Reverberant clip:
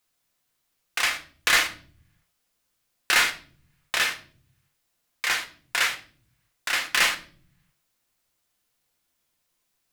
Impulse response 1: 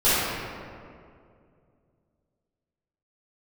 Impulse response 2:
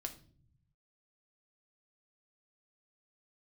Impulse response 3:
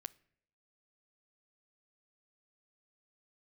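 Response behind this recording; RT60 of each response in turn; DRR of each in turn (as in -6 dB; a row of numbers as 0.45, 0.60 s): 2; 2.3 s, 0.50 s, not exponential; -16.0, 4.5, 16.5 dB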